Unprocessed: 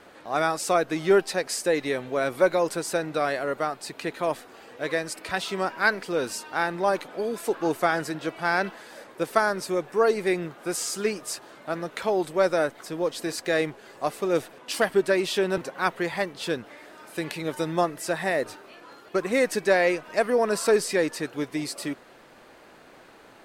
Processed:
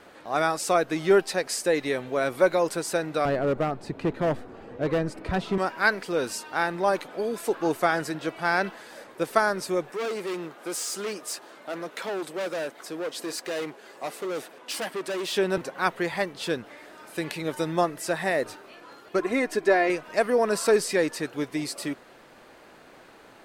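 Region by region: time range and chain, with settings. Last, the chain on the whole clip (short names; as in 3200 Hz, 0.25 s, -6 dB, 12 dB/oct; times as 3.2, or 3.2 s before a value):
3.25–5.58 tilt -4.5 dB/oct + overloaded stage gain 19.5 dB
9.91–15.33 overloaded stage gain 27.5 dB + HPF 240 Hz
19.19–19.9 high shelf 2900 Hz -10.5 dB + comb 2.9 ms, depth 59% + mismatched tape noise reduction encoder only
whole clip: dry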